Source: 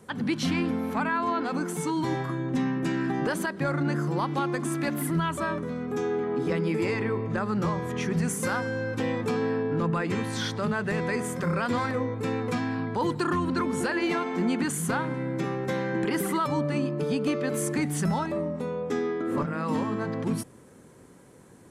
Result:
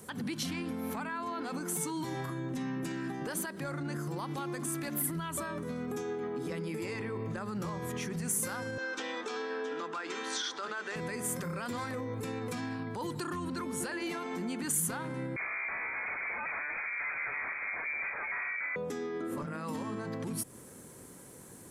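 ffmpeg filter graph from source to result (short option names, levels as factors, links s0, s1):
-filter_complex "[0:a]asettb=1/sr,asplit=3[s0][s1][s2];[s0]atrim=end=8.784[s3];[s1]atrim=start=8.78:end=10.96,asetpts=PTS-STARTPTS,afade=t=in:d=0.004:c=qsin,afade=t=out:st=2.176:d=0.004:c=qsin,highpass=f=340:w=0.5412,highpass=f=340:w=1.3066,equalizer=f=530:t=q:w=4:g=-6,equalizer=f=1400:t=q:w=4:g=7,equalizer=f=3400:t=q:w=4:g=6,equalizer=f=6000:t=q:w=4:g=4,lowpass=f=7100:w=0.5412,lowpass=f=7100:w=1.3066,aecho=1:1:668:0.266,atrim=end_sample=96138[s4];[s2]atrim=start=10.956[s5];[s3][s4]acrossfade=d=0.004:c1=hsin:c2=qsin[s6];[s6][s5]acrossfade=d=0.004:c1=qsin:c2=hsin,asettb=1/sr,asplit=3[s7][s8][s9];[s7]atrim=end=15.364[s10];[s8]atrim=start=15.36:end=18.76,asetpts=PTS-STARTPTS,afade=t=in:d=0.004:c=qsin,afade=t=out:st=3.396:d=0.004:c=qsin,aeval=exprs='0.0376*(abs(mod(val(0)/0.0376+3,4)-2)-1)':c=same,lowpass=f=2100:t=q:w=0.5098,lowpass=f=2100:t=q:w=0.6013,lowpass=f=2100:t=q:w=0.9,lowpass=f=2100:t=q:w=2.563,afreqshift=-2500[s11];[s9]atrim=start=18.756[s12];[s10][s11]acrossfade=d=0.004:c1=hsin:c2=qsin[s13];[s13][s12]acrossfade=d=0.004:c1=qsin:c2=hsin,alimiter=level_in=1.78:limit=0.0631:level=0:latency=1:release=157,volume=0.562,aemphasis=mode=production:type=50fm"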